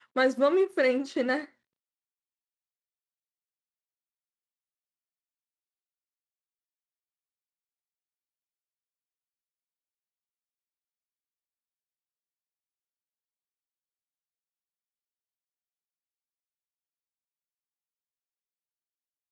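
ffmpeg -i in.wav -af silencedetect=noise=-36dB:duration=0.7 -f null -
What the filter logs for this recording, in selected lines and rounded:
silence_start: 1.44
silence_end: 19.32 | silence_duration: 17.87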